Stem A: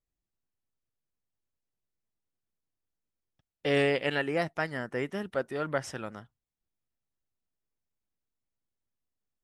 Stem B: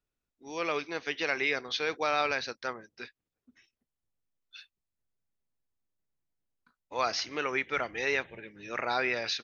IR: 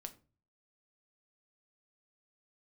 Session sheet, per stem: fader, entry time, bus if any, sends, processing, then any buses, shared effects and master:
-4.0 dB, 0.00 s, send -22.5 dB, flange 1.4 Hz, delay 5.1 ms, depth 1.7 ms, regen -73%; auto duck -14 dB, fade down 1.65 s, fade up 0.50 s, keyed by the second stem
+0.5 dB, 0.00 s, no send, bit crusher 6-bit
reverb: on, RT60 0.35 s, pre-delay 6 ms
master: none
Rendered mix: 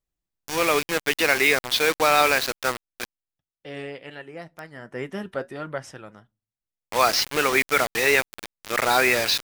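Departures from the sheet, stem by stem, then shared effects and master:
stem A -4.0 dB -> +7.0 dB; stem B +0.5 dB -> +10.0 dB

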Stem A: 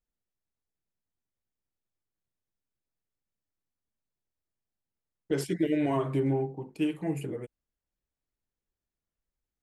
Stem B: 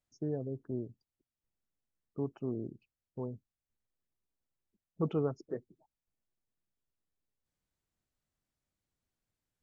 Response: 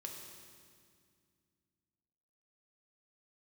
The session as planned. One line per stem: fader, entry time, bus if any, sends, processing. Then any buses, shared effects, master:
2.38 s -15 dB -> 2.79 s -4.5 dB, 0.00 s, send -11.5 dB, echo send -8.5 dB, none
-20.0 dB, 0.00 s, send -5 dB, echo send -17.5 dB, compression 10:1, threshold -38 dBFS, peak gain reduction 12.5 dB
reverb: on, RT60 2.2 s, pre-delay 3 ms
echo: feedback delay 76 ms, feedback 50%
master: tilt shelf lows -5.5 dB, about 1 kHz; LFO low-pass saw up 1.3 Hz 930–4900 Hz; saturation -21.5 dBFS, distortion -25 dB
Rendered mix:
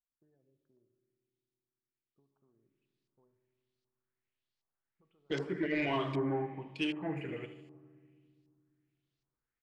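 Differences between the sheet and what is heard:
stem B -20.0 dB -> -31.5 dB; reverb return +6.5 dB

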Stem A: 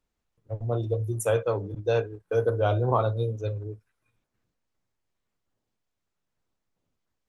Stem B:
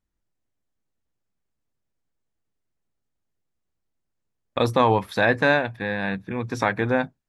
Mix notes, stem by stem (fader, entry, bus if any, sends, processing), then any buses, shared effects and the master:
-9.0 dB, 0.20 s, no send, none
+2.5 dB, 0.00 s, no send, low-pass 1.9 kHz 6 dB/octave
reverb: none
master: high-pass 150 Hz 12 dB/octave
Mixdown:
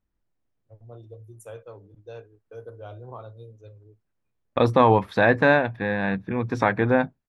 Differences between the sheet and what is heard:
stem A -9.0 dB -> -16.5 dB; master: missing high-pass 150 Hz 12 dB/octave

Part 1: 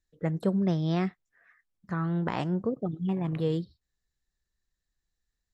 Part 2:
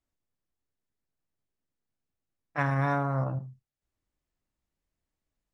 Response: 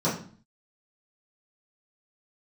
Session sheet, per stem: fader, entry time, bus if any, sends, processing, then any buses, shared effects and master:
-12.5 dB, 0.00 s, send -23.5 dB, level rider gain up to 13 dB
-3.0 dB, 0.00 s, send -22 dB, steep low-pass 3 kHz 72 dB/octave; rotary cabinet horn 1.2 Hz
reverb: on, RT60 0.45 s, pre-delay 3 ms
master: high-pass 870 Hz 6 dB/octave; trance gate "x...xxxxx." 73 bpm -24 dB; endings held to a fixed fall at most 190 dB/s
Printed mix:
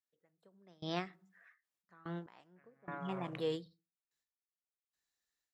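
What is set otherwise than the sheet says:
stem 2 -3.0 dB -> -10.0 dB; reverb return -10.0 dB

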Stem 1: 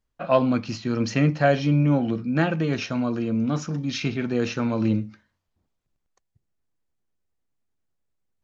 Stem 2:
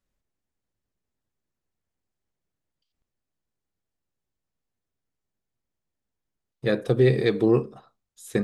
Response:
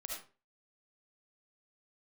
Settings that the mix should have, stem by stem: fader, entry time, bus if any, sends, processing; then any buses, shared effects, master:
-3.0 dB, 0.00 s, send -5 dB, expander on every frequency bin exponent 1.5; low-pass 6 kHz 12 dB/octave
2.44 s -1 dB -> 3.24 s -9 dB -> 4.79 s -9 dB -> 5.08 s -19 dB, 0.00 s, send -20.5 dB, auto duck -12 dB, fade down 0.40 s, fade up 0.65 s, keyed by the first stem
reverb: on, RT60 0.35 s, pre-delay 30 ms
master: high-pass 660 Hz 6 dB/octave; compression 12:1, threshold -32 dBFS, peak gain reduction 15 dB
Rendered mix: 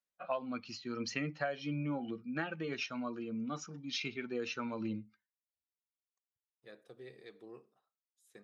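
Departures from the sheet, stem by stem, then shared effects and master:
stem 1: send off; stem 2 -1.0 dB -> -8.5 dB

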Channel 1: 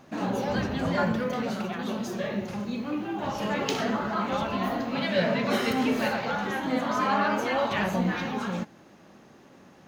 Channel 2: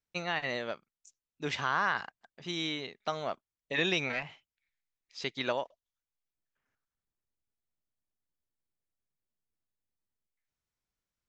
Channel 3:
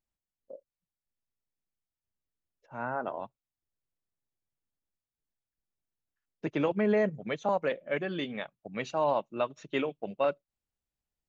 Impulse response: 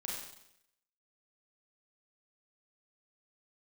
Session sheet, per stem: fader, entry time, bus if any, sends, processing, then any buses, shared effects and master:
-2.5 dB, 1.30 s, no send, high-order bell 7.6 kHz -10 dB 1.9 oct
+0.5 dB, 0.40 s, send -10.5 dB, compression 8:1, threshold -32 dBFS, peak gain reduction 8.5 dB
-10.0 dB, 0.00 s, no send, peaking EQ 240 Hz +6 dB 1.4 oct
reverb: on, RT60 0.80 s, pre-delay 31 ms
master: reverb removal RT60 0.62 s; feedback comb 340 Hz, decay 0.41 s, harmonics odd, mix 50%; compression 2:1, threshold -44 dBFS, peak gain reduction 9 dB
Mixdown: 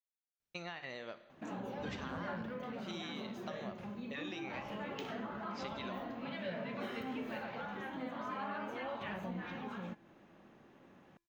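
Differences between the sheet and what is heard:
stem 3: muted; master: missing reverb removal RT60 0.62 s

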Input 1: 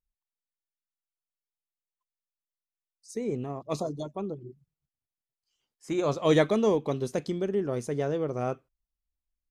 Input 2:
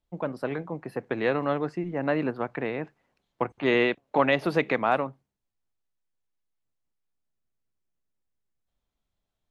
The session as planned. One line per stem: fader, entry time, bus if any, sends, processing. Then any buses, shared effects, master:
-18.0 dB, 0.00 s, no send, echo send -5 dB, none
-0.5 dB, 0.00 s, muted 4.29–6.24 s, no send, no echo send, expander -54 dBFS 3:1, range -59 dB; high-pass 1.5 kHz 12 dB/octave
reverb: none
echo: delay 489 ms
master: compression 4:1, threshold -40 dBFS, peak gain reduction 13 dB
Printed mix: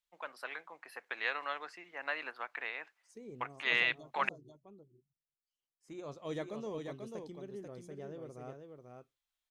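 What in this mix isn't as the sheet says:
stem 2: missing expander -54 dBFS 3:1, range -59 dB; master: missing compression 4:1, threshold -40 dBFS, peak gain reduction 13 dB

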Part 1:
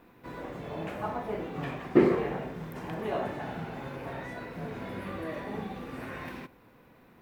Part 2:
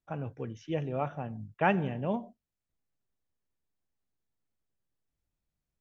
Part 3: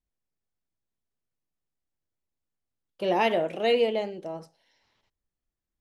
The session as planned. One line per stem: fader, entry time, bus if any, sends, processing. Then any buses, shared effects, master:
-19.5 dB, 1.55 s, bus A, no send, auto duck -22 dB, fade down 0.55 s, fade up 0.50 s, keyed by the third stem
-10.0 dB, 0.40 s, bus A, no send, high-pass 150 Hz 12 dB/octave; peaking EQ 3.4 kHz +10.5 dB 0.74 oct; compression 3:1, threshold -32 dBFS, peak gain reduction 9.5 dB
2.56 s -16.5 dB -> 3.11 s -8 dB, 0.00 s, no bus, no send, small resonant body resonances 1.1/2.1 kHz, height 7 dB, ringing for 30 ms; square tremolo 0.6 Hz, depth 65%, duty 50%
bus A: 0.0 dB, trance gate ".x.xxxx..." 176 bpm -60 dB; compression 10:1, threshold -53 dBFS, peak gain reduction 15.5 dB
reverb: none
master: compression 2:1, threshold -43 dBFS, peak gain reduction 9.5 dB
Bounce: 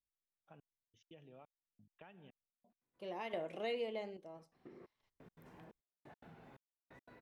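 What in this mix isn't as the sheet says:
stem 1: entry 1.55 s -> 2.70 s; stem 2 -10.0 dB -> -20.5 dB

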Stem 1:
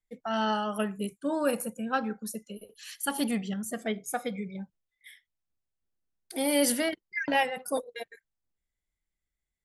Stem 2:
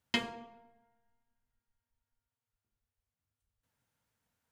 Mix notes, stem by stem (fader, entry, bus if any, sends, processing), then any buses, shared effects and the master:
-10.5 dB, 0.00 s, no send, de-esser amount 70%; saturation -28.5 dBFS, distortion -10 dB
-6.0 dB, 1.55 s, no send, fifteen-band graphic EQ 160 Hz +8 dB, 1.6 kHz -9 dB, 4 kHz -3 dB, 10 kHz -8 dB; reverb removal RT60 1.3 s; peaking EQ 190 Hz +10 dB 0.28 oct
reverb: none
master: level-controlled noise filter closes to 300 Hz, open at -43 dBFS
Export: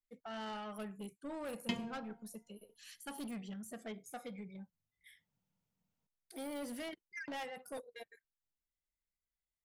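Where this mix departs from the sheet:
stem 2: missing reverb removal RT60 1.3 s; master: missing level-controlled noise filter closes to 300 Hz, open at -43 dBFS

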